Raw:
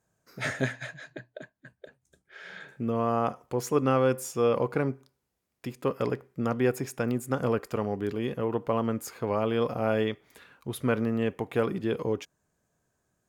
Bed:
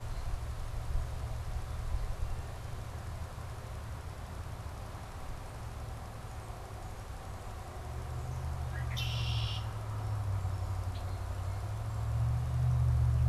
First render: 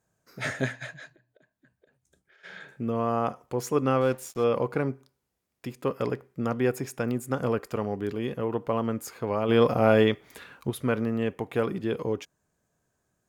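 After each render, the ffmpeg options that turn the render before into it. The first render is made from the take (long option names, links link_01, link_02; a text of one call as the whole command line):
ffmpeg -i in.wav -filter_complex "[0:a]asplit=3[link_01][link_02][link_03];[link_01]afade=type=out:start_time=1.14:duration=0.02[link_04];[link_02]acompressor=threshold=-57dB:ratio=12:attack=3.2:release=140:knee=1:detection=peak,afade=type=in:start_time=1.14:duration=0.02,afade=type=out:start_time=2.43:duration=0.02[link_05];[link_03]afade=type=in:start_time=2.43:duration=0.02[link_06];[link_04][link_05][link_06]amix=inputs=3:normalize=0,asettb=1/sr,asplit=3[link_07][link_08][link_09];[link_07]atrim=end=4.014[link_10];[link_08]atrim=start=4.01:end=4.44,asetpts=PTS-STARTPTS,afade=type=in:duration=0.004:curve=qsin,afade=type=out:start_time=0.426:duration=0.004:curve=qsin,aeval=exprs='sgn(val(0))*max(abs(val(0))-0.00668,0)':channel_layout=same[link_11];[link_09]atrim=start=4.436[link_12];[link_10][link_11]acrossfade=duration=0.004:curve1=hsin:curve2=qsin[link_13];[link_13][link_12]acrossfade=duration=0.004:curve1=qsin:curve2=hsin,asplit=3[link_14][link_15][link_16];[link_14]afade=type=out:start_time=9.48:duration=0.02[link_17];[link_15]acontrast=79,afade=type=in:start_time=9.48:duration=0.02,afade=type=out:start_time=10.69:duration=0.02[link_18];[link_16]afade=type=in:start_time=10.69:duration=0.02[link_19];[link_17][link_18][link_19]amix=inputs=3:normalize=0" out.wav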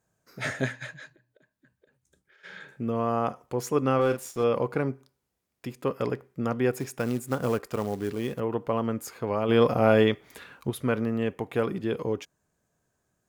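ffmpeg -i in.wav -filter_complex "[0:a]asettb=1/sr,asplit=3[link_01][link_02][link_03];[link_01]atrim=end=0.684[link_04];[link_02]atrim=start=0.68:end=2.74,asetpts=PTS-STARTPTS,afade=type=in:duration=0.004:curve=qsin,afade=type=out:start_time=2.056:duration=0.004:curve=qsin,bandreject=frequency=690:width=5.9[link_05];[link_03]atrim=start=2.736[link_06];[link_04][link_05]acrossfade=duration=0.004:curve1=hsin:curve2=qsin[link_07];[link_07][link_06]acrossfade=duration=0.004:curve1=qsin:curve2=hsin,asettb=1/sr,asplit=3[link_08][link_09][link_10];[link_08]atrim=end=3.954[link_11];[link_09]atrim=start=3.95:end=4.43,asetpts=PTS-STARTPTS,afade=type=in:duration=0.004:curve=qsin,afade=type=out:start_time=0.476:duration=0.004:curve=qsin,asplit=2[link_12][link_13];[link_13]adelay=41,volume=-7.5dB[link_14];[link_12][link_14]amix=inputs=2:normalize=0,atrim=end_sample=21168[link_15];[link_10]atrim=start=4.426[link_16];[link_11][link_15]acrossfade=duration=0.004:curve1=hsin:curve2=qsin[link_17];[link_17][link_16]acrossfade=duration=0.004:curve1=qsin:curve2=hsin,asettb=1/sr,asplit=3[link_18][link_19][link_20];[link_18]atrim=end=6.734[link_21];[link_19]atrim=start=6.73:end=8.4,asetpts=PTS-STARTPTS,afade=type=in:duration=0.004:curve=qsin,afade=type=out:start_time=1.666:duration=0.004:curve=qsin,acrusher=bits=5:mode=log:mix=0:aa=0.000001[link_22];[link_20]atrim=start=8.396[link_23];[link_21][link_22]acrossfade=duration=0.004:curve1=hsin:curve2=qsin[link_24];[link_24][link_23]acrossfade=duration=0.004:curve1=qsin:curve2=hsin" out.wav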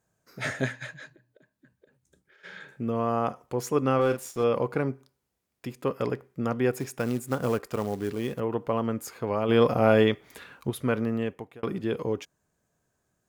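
ffmpeg -i in.wav -filter_complex "[0:a]asettb=1/sr,asplit=3[link_01][link_02][link_03];[link_01]atrim=end=1.004[link_04];[link_02]atrim=start=1:end=2.5,asetpts=PTS-STARTPTS,afade=type=in:duration=0.004:curve=qsin,afade=type=out:start_time=1.496:duration=0.004:curve=qsin,equalizer=frequency=240:width_type=o:width=2.9:gain=4.5[link_05];[link_03]atrim=start=2.496[link_06];[link_04][link_05]acrossfade=duration=0.004:curve1=hsin:curve2=qsin[link_07];[link_07][link_06]acrossfade=duration=0.004:curve1=qsin:curve2=hsin,asplit=2[link_08][link_09];[link_08]atrim=end=11.63,asetpts=PTS-STARTPTS,afade=type=out:start_time=11.15:duration=0.48[link_10];[link_09]atrim=start=11.63,asetpts=PTS-STARTPTS,afade=type=in:duration=0.004:curve=hsin[link_11];[link_10][link_11]concat=n=2:v=0:a=1" out.wav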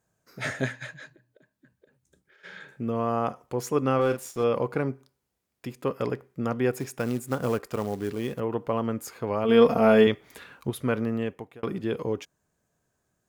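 ffmpeg -i in.wav -filter_complex "[0:a]asettb=1/sr,asplit=3[link_01][link_02][link_03];[link_01]atrim=end=9.444[link_04];[link_02]atrim=start=9.44:end=10.07,asetpts=PTS-STARTPTS,afade=type=in:duration=0.004:curve=qsin,afade=type=out:start_time=0.626:duration=0.004:curve=qsin,aecho=1:1:4.4:0.65,atrim=end_sample=27783[link_05];[link_03]atrim=start=10.066[link_06];[link_04][link_05]acrossfade=duration=0.004:curve1=hsin:curve2=qsin[link_07];[link_07][link_06]acrossfade=duration=0.004:curve1=qsin:curve2=hsin" out.wav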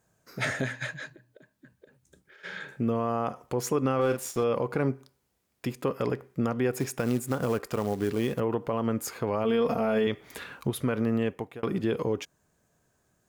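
ffmpeg -i in.wav -filter_complex "[0:a]asplit=2[link_01][link_02];[link_02]acompressor=threshold=-31dB:ratio=6,volume=-2dB[link_03];[link_01][link_03]amix=inputs=2:normalize=0,alimiter=limit=-17dB:level=0:latency=1:release=85" out.wav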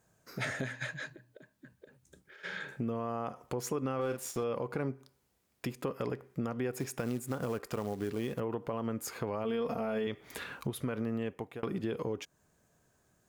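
ffmpeg -i in.wav -af "acompressor=threshold=-37dB:ratio=2" out.wav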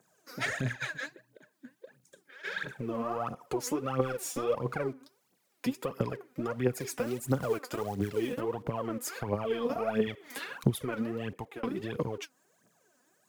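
ffmpeg -i in.wav -filter_complex "[0:a]aphaser=in_gain=1:out_gain=1:delay=4.2:decay=0.74:speed=1.5:type=triangular,acrossover=split=160|880|2800[link_01][link_02][link_03][link_04];[link_01]aeval=exprs='val(0)*gte(abs(val(0)),0.00237)':channel_layout=same[link_05];[link_05][link_02][link_03][link_04]amix=inputs=4:normalize=0" out.wav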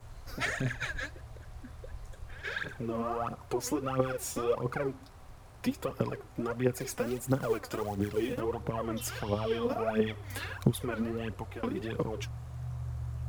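ffmpeg -i in.wav -i bed.wav -filter_complex "[1:a]volume=-9dB[link_01];[0:a][link_01]amix=inputs=2:normalize=0" out.wav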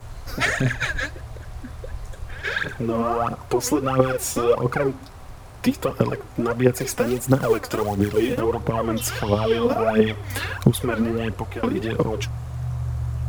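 ffmpeg -i in.wav -af "volume=11dB,alimiter=limit=-1dB:level=0:latency=1" out.wav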